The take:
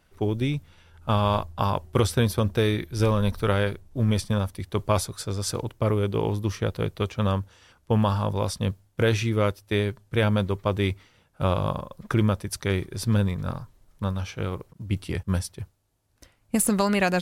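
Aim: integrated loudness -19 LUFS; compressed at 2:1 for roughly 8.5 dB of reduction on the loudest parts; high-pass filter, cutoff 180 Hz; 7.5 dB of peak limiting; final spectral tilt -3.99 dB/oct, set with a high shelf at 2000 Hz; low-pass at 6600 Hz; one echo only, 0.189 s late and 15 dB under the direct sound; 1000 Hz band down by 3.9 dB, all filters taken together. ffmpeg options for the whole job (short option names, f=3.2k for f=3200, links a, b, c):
-af "highpass=180,lowpass=6.6k,equalizer=f=1k:t=o:g=-7,highshelf=f=2k:g=8.5,acompressor=threshold=-34dB:ratio=2,alimiter=limit=-21.5dB:level=0:latency=1,aecho=1:1:189:0.178,volume=17.5dB"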